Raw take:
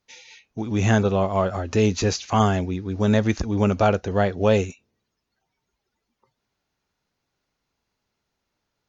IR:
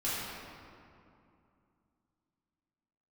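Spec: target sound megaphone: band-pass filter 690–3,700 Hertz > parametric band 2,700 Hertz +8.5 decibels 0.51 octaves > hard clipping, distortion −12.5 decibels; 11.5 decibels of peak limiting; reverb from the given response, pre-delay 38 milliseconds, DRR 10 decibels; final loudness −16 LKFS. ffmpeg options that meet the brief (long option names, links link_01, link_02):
-filter_complex "[0:a]alimiter=limit=-17dB:level=0:latency=1,asplit=2[link_01][link_02];[1:a]atrim=start_sample=2205,adelay=38[link_03];[link_02][link_03]afir=irnorm=-1:irlink=0,volume=-17.5dB[link_04];[link_01][link_04]amix=inputs=2:normalize=0,highpass=690,lowpass=3700,equalizer=frequency=2700:width_type=o:width=0.51:gain=8.5,asoftclip=type=hard:threshold=-28.5dB,volume=19dB"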